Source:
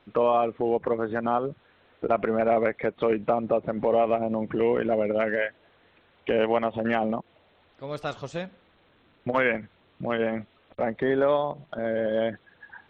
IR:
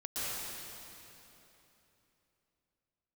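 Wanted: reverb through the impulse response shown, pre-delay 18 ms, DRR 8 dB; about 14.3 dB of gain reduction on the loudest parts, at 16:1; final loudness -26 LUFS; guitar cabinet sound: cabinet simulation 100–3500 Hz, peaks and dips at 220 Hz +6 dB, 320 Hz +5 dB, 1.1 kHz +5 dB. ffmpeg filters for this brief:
-filter_complex "[0:a]acompressor=threshold=0.0251:ratio=16,asplit=2[s0][s1];[1:a]atrim=start_sample=2205,adelay=18[s2];[s1][s2]afir=irnorm=-1:irlink=0,volume=0.224[s3];[s0][s3]amix=inputs=2:normalize=0,highpass=100,equalizer=f=220:t=q:w=4:g=6,equalizer=f=320:t=q:w=4:g=5,equalizer=f=1100:t=q:w=4:g=5,lowpass=f=3500:w=0.5412,lowpass=f=3500:w=1.3066,volume=3.16"

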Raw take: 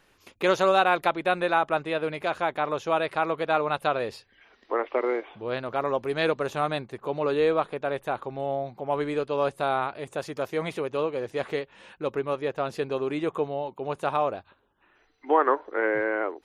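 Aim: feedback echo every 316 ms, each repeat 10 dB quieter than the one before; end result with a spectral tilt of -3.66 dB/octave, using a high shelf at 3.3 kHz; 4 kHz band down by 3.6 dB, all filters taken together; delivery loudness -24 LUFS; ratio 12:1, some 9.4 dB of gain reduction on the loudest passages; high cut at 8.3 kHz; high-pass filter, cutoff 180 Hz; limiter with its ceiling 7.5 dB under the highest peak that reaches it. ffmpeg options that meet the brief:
-af "highpass=180,lowpass=8300,highshelf=f=3300:g=6.5,equalizer=f=4000:t=o:g=-8.5,acompressor=threshold=0.0562:ratio=12,alimiter=limit=0.0891:level=0:latency=1,aecho=1:1:316|632|948|1264:0.316|0.101|0.0324|0.0104,volume=2.82"

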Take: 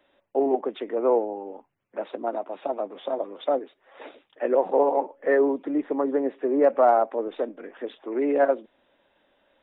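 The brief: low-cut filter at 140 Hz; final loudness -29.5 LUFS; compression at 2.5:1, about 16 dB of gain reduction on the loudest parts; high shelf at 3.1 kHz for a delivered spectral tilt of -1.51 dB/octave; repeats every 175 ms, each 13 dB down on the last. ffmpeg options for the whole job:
-af "highpass=140,highshelf=f=3100:g=8.5,acompressor=threshold=0.01:ratio=2.5,aecho=1:1:175|350|525:0.224|0.0493|0.0108,volume=2.82"

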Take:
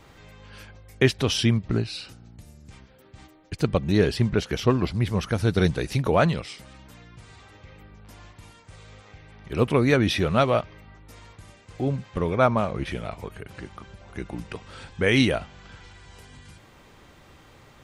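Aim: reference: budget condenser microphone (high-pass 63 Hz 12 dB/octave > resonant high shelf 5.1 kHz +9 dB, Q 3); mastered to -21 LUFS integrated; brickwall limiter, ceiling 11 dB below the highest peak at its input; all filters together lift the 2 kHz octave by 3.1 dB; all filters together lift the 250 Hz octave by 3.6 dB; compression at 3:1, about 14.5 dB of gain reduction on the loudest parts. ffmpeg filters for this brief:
-af "equalizer=f=250:t=o:g=4.5,equalizer=f=2000:t=o:g=5.5,acompressor=threshold=0.0251:ratio=3,alimiter=level_in=1.12:limit=0.0631:level=0:latency=1,volume=0.891,highpass=63,highshelf=f=5100:t=q:w=3:g=9,volume=7.08"

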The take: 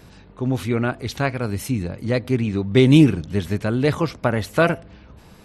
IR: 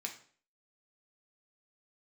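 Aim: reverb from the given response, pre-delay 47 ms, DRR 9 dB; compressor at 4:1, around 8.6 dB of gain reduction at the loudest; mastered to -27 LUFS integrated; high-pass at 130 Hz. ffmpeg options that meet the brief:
-filter_complex "[0:a]highpass=130,acompressor=threshold=0.126:ratio=4,asplit=2[s0][s1];[1:a]atrim=start_sample=2205,adelay=47[s2];[s1][s2]afir=irnorm=-1:irlink=0,volume=0.376[s3];[s0][s3]amix=inputs=2:normalize=0,volume=0.794"

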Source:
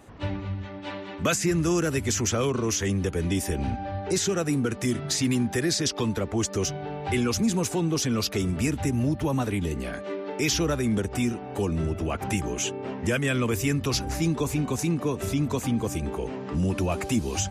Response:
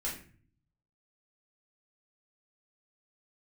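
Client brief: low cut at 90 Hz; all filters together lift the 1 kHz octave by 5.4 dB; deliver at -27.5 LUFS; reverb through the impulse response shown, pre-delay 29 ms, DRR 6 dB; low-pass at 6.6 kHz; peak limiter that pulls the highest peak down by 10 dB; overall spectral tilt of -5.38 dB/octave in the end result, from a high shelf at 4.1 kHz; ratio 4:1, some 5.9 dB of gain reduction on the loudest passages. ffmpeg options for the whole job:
-filter_complex "[0:a]highpass=90,lowpass=6600,equalizer=f=1000:t=o:g=7.5,highshelf=f=4100:g=-6,acompressor=threshold=0.0501:ratio=4,alimiter=level_in=1.33:limit=0.0631:level=0:latency=1,volume=0.75,asplit=2[s0][s1];[1:a]atrim=start_sample=2205,adelay=29[s2];[s1][s2]afir=irnorm=-1:irlink=0,volume=0.376[s3];[s0][s3]amix=inputs=2:normalize=0,volume=2"

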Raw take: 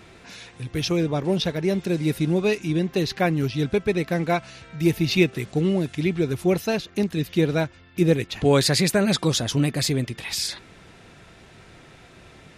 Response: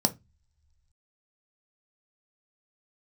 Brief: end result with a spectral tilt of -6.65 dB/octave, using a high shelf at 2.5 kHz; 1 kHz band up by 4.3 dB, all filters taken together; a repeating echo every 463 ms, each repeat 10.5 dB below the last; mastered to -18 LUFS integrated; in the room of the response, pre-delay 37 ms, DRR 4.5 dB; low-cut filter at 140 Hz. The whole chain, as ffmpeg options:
-filter_complex "[0:a]highpass=140,equalizer=f=1000:t=o:g=7.5,highshelf=f=2500:g=-7,aecho=1:1:463|926|1389:0.299|0.0896|0.0269,asplit=2[s0][s1];[1:a]atrim=start_sample=2205,adelay=37[s2];[s1][s2]afir=irnorm=-1:irlink=0,volume=0.211[s3];[s0][s3]amix=inputs=2:normalize=0,volume=1.12"

